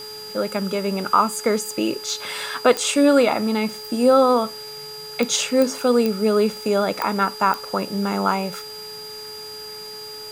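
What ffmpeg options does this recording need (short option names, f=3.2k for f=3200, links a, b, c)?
-af "adeclick=t=4,bandreject=f=427.3:t=h:w=4,bandreject=f=854.6:t=h:w=4,bandreject=f=1.2819k:t=h:w=4,bandreject=f=1.7092k:t=h:w=4,bandreject=f=4.8k:w=30,afwtdn=0.0071"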